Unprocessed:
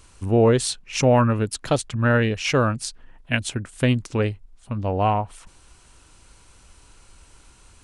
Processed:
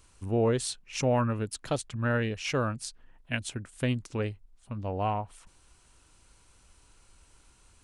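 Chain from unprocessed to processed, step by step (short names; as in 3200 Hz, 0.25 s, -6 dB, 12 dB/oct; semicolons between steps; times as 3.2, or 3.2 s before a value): high shelf 10000 Hz +3.5 dB; gain -9 dB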